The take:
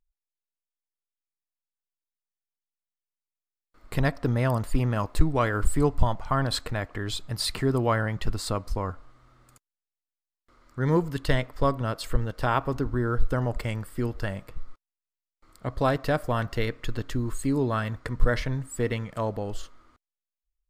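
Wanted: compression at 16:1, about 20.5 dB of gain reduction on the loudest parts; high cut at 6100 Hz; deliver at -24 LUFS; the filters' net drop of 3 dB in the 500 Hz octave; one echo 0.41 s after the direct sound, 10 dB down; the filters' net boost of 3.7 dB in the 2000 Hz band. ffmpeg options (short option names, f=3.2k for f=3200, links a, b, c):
-af "lowpass=6.1k,equalizer=f=500:t=o:g=-4,equalizer=f=2k:t=o:g=5,acompressor=threshold=-32dB:ratio=16,aecho=1:1:410:0.316,volume=14.5dB"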